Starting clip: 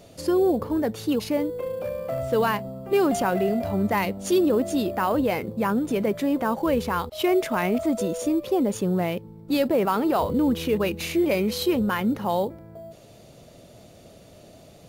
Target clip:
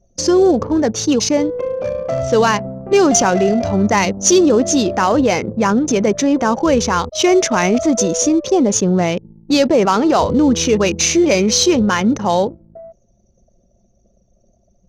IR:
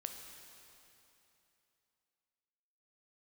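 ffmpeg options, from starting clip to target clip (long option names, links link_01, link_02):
-af "lowpass=frequency=6100:width_type=q:width=10,anlmdn=6.31,acontrast=40,volume=3.5dB"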